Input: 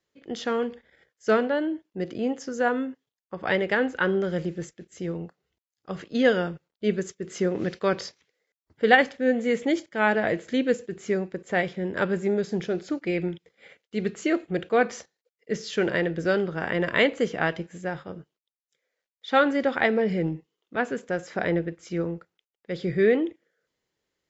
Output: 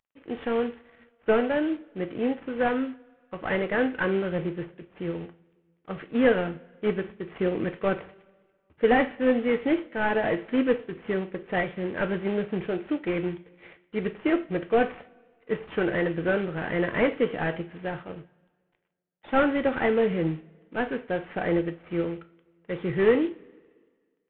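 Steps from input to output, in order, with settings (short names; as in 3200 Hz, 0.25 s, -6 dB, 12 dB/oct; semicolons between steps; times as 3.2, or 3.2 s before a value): CVSD 16 kbps; two-slope reverb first 0.29 s, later 1.7 s, from -21 dB, DRR 8.5 dB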